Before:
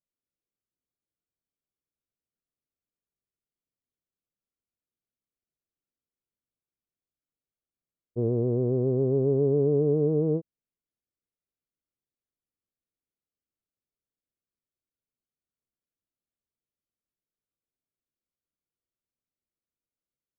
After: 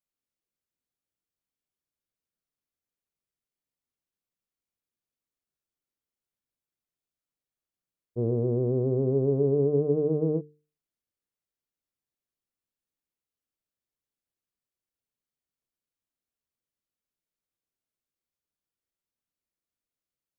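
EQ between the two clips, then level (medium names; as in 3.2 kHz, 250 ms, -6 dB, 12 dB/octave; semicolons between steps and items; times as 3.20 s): hum notches 50/100/150/200/250/300/350/400/450 Hz; 0.0 dB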